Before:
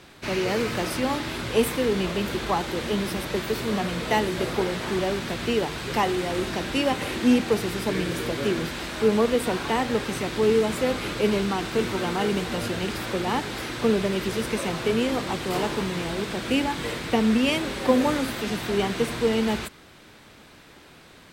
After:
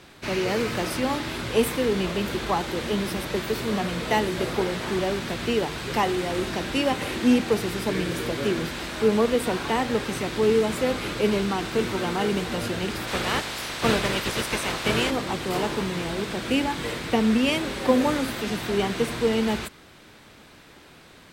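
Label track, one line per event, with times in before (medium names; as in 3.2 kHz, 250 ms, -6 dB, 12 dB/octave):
13.070000	15.090000	spectral peaks clipped ceiling under each frame's peak by 15 dB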